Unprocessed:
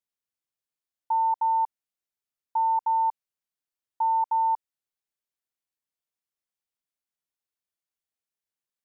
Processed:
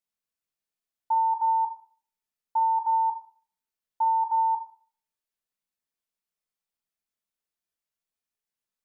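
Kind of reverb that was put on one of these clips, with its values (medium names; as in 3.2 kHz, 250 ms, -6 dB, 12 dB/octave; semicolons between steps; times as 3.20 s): simulated room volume 450 m³, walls furnished, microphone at 1.5 m; trim -1.5 dB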